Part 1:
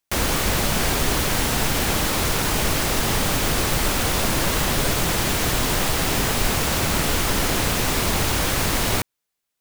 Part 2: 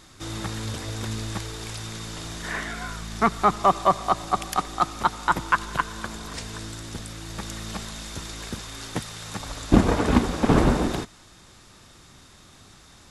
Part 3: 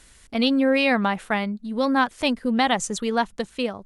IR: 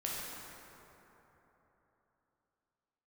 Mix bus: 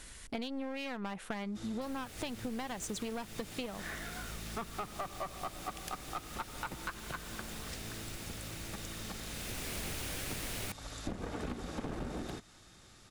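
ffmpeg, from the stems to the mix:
-filter_complex "[0:a]equalizer=f=1k:t=o:w=0.67:g=-6,equalizer=f=2.5k:t=o:w=0.67:g=3,equalizer=f=10k:t=o:w=0.67:g=4,adelay=1700,volume=-11dB,afade=t=in:st=9.26:d=0.55:silence=0.237137[a];[1:a]bandreject=f=1k:w=8.1,aeval=exprs='clip(val(0),-1,0.0944)':c=same,adelay=1350,volume=-7.5dB[b];[2:a]volume=1.5dB[c];[b][c]amix=inputs=2:normalize=0,aeval=exprs='clip(val(0),-1,0.0473)':c=same,acompressor=threshold=-25dB:ratio=6,volume=0dB[d];[a][d]amix=inputs=2:normalize=0,acompressor=threshold=-40dB:ratio=2.5"

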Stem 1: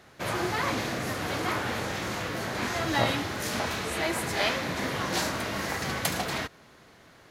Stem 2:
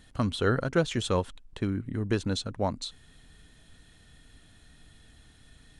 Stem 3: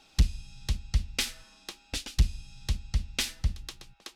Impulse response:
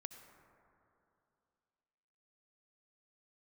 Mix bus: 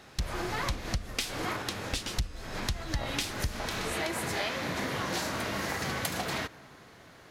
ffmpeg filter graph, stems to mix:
-filter_complex "[0:a]volume=-0.5dB,asplit=2[a][b];[b]volume=-9.5dB[c];[1:a]acompressor=threshold=-32dB:ratio=6,asoftclip=type=hard:threshold=-31dB,volume=-9dB,afade=t=in:st=0.71:d=0.49:silence=0.281838,asplit=2[d][e];[2:a]dynaudnorm=f=240:g=3:m=9.5dB,volume=-2dB[f];[e]apad=whole_len=322294[g];[a][g]sidechaincompress=threshold=-57dB:ratio=4:attack=42:release=207[h];[3:a]atrim=start_sample=2205[i];[c][i]afir=irnorm=-1:irlink=0[j];[h][d][f][j]amix=inputs=4:normalize=0,acompressor=threshold=-29dB:ratio=6"

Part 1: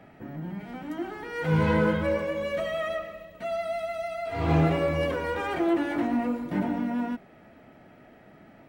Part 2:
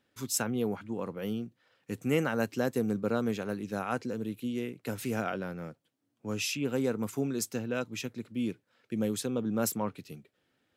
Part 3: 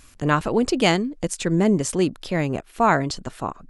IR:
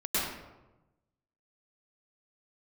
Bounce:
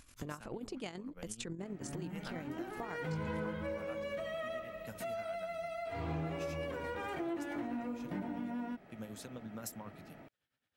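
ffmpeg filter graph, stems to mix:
-filter_complex "[0:a]adelay=1600,volume=-2dB[a];[1:a]equalizer=f=360:w=1:g=-10,volume=-7dB[b];[2:a]tremolo=f=44:d=0.519,volume=-5dB[c];[b][c]amix=inputs=2:normalize=0,tremolo=f=9.2:d=0.67,acompressor=threshold=-35dB:ratio=5,volume=0dB[d];[a][d]amix=inputs=2:normalize=0,acompressor=threshold=-40dB:ratio=3"

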